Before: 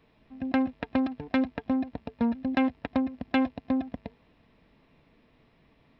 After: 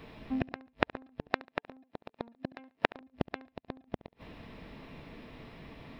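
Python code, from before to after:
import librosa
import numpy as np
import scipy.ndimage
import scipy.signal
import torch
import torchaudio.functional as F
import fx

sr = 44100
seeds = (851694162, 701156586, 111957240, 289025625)

y = fx.highpass(x, sr, hz=210.0, slope=12, at=(1.31, 3.01))
y = fx.gate_flip(y, sr, shuts_db=-25.0, range_db=-42)
y = fx.echo_feedback(y, sr, ms=70, feedback_pct=33, wet_db=-21)
y = y * librosa.db_to_amplitude(13.5)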